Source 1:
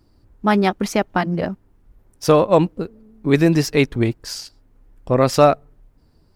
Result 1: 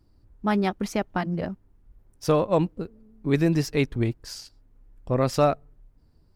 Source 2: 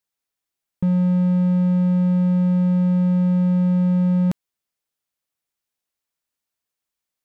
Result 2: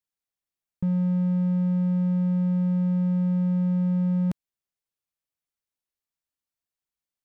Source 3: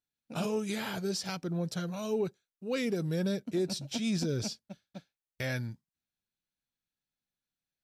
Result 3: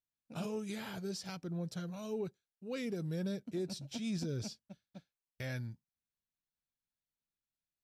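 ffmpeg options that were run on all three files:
-af "lowshelf=f=160:g=6.5,volume=-8.5dB"

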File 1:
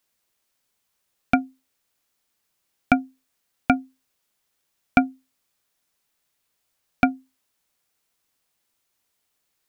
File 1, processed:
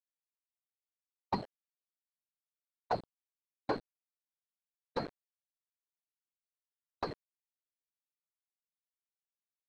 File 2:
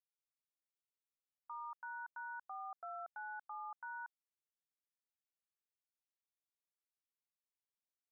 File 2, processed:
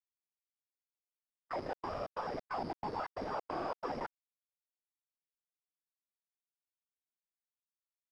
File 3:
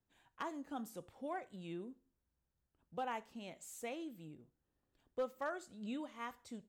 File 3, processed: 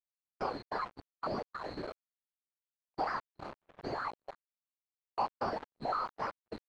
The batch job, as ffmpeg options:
-filter_complex "[0:a]afftfilt=real='real(if(lt(b,736),b+184*(1-2*mod(floor(b/184),2)),b),0)':imag='imag(if(lt(b,736),b+184*(1-2*mod(floor(b/184),2)),b),0)':win_size=2048:overlap=0.75,asplit=2[a][b];[b]acrusher=samples=16:mix=1:aa=0.000001:lfo=1:lforange=16:lforate=0.62,volume=-6.5dB[c];[a][c]amix=inputs=2:normalize=0,highpass=f=62:w=0.5412,highpass=f=62:w=1.3066,tremolo=f=170:d=0.788,acompressor=threshold=-36dB:ratio=6,equalizer=f=960:w=0.32:g=14,afftfilt=real='hypot(re,im)*cos(2*PI*random(0))':imag='hypot(re,im)*sin(2*PI*random(1))':win_size=512:overlap=0.75,acrusher=bits=7:mix=0:aa=0.000001,asoftclip=type=tanh:threshold=-37dB,lowpass=1.3k,agate=range=-34dB:threshold=-58dB:ratio=16:detection=peak,volume=15dB"

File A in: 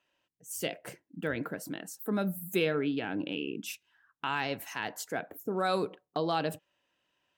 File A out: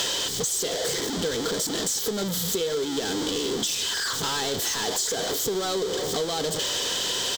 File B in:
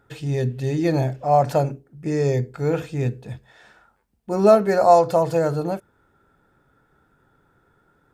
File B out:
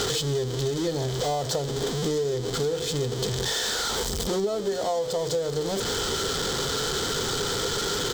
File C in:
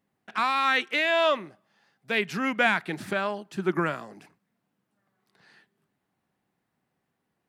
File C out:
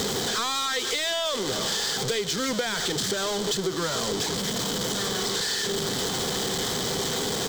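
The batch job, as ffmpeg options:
-filter_complex "[0:a]aeval=exprs='val(0)+0.5*0.112*sgn(val(0))':c=same,superequalizer=7b=2.82:12b=0.708:13b=3.55:14b=3.55:15b=3.55,asplit=2[a][b];[b]asplit=3[c][d][e];[c]adelay=137,afreqshift=-78,volume=-20dB[f];[d]adelay=274,afreqshift=-156,volume=-26.9dB[g];[e]adelay=411,afreqshift=-234,volume=-33.9dB[h];[f][g][h]amix=inputs=3:normalize=0[i];[a][i]amix=inputs=2:normalize=0,acompressor=threshold=-20dB:ratio=10,volume=-4dB"

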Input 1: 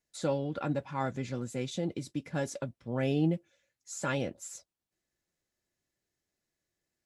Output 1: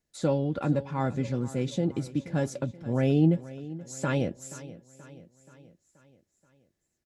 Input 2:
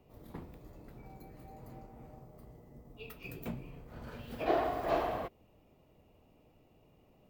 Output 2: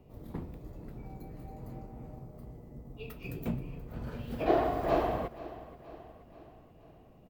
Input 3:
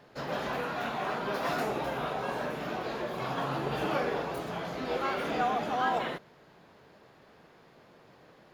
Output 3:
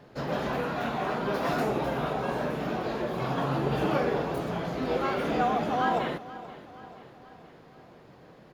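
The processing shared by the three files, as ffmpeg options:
-filter_complex "[0:a]lowshelf=f=500:g=8,asplit=2[a][b];[b]aecho=0:1:479|958|1437|1916|2395:0.141|0.0763|0.0412|0.0222|0.012[c];[a][c]amix=inputs=2:normalize=0"

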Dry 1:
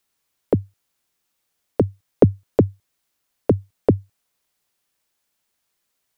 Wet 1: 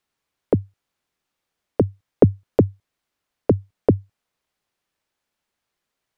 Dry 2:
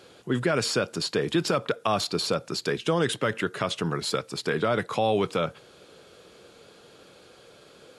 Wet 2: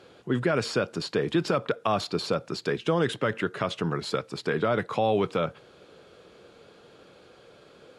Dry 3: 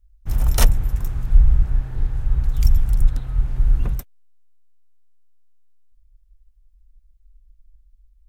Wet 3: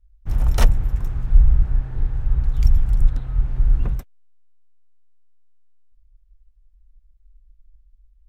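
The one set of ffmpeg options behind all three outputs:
-af "lowpass=f=2.8k:p=1"

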